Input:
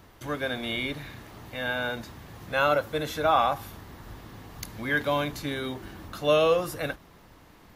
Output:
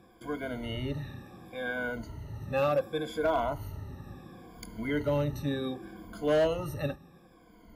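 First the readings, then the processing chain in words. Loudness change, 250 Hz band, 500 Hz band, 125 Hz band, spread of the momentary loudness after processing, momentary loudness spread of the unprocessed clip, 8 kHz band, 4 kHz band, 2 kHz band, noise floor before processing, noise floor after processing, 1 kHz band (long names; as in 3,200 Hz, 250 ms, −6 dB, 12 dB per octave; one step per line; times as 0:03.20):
−4.5 dB, 0.0 dB, −3.0 dB, +2.0 dB, 18 LU, 22 LU, −9.0 dB, −9.5 dB, −8.0 dB, −54 dBFS, −58 dBFS, −8.5 dB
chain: rippled gain that drifts along the octave scale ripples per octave 1.8, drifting −0.69 Hz, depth 22 dB
tilt shelving filter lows +6 dB, about 720 Hz
asymmetric clip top −12.5 dBFS, bottom −11.5 dBFS
level −8.5 dB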